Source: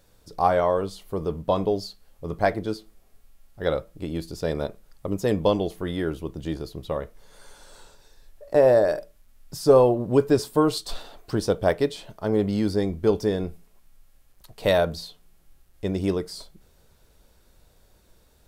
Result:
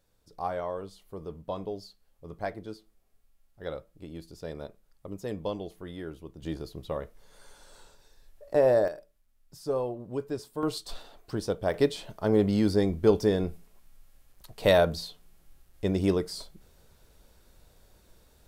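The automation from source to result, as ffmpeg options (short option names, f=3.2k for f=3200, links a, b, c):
-af "asetnsamples=n=441:p=0,asendcmd='6.42 volume volume -5dB;8.88 volume volume -14dB;10.63 volume volume -7dB;11.74 volume volume -0.5dB',volume=-12dB"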